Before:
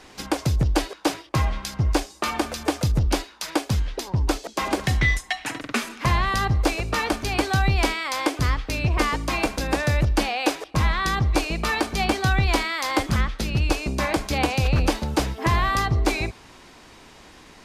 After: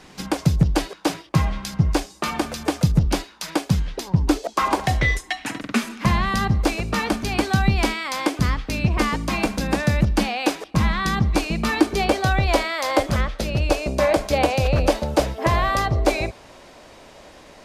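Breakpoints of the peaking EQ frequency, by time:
peaking EQ +12 dB 0.53 oct
4.22 s 170 Hz
4.60 s 1.3 kHz
5.52 s 200 Hz
11.59 s 200 Hz
12.16 s 590 Hz

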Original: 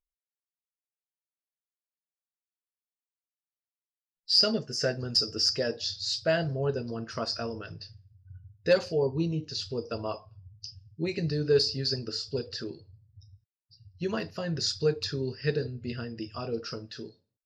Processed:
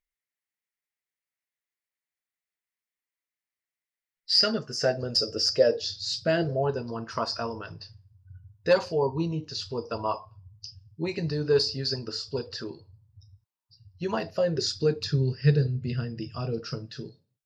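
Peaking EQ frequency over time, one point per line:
peaking EQ +13 dB 0.58 oct
4.40 s 2 kHz
5.05 s 550 Hz
5.70 s 550 Hz
6.17 s 150 Hz
6.70 s 970 Hz
14.08 s 970 Hz
15.19 s 140 Hz

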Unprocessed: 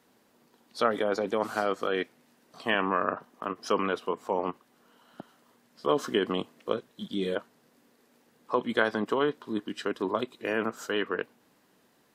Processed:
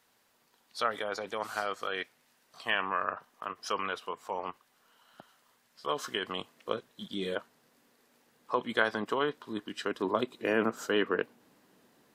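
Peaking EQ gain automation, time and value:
peaking EQ 260 Hz 2.5 oct
6.26 s -14 dB
6.75 s -6 dB
9.71 s -6 dB
10.35 s +2 dB

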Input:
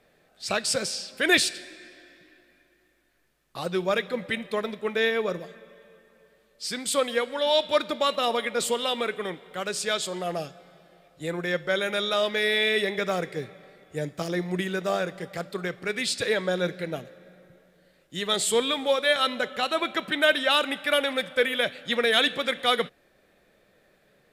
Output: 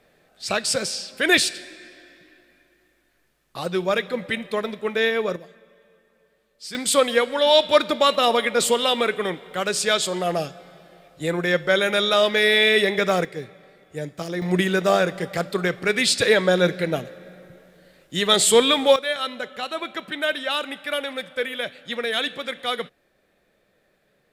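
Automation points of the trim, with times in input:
+3 dB
from 5.36 s -4 dB
from 6.75 s +6.5 dB
from 13.25 s 0 dB
from 14.42 s +8 dB
from 18.96 s -3 dB

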